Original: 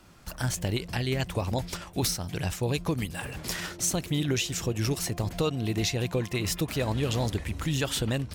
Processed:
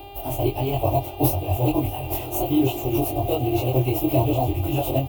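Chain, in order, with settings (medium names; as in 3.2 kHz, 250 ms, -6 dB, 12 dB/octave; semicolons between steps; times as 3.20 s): sawtooth pitch modulation +1 st, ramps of 407 ms; in parallel at -5 dB: decimation with a swept rate 18×, swing 100% 3.4 Hz; on the sum: resonant high shelf 4.8 kHz +7 dB, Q 1.5; reverse; upward compressor, threshold -36 dBFS; reverse; delay 995 ms -17 dB; plain phase-vocoder stretch 0.61×; doubling 23 ms -2 dB; mains buzz 400 Hz, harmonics 12, -47 dBFS -2 dB/octave; FFT filter 130 Hz 0 dB, 190 Hz -30 dB, 310 Hz +6 dB, 470 Hz -5 dB, 700 Hz +10 dB, 1.7 kHz -26 dB, 2.7 kHz 0 dB, 5.6 kHz -25 dB, 8.2 kHz -21 dB, 16 kHz +8 dB; trim +6.5 dB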